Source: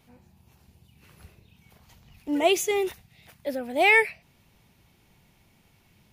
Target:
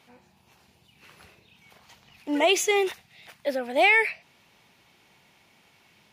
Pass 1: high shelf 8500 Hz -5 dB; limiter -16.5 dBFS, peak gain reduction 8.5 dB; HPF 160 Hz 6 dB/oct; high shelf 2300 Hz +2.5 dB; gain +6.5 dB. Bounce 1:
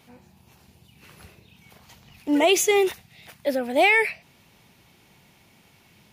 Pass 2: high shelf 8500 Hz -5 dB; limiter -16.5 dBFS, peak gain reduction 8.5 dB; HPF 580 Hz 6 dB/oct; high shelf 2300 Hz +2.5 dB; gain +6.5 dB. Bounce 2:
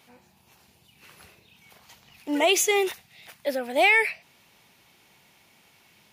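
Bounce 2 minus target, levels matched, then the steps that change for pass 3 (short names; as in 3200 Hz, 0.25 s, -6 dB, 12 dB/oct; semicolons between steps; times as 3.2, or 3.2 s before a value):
8000 Hz band +3.5 dB
change: first high shelf 8500 Hz -15.5 dB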